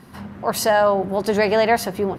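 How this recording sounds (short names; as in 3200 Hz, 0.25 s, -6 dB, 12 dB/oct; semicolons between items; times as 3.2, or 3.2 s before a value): noise floor -44 dBFS; spectral tilt -4.0 dB/oct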